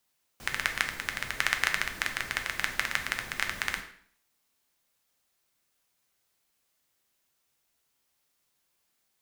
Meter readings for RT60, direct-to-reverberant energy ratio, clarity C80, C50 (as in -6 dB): 0.60 s, 4.5 dB, 13.5 dB, 10.0 dB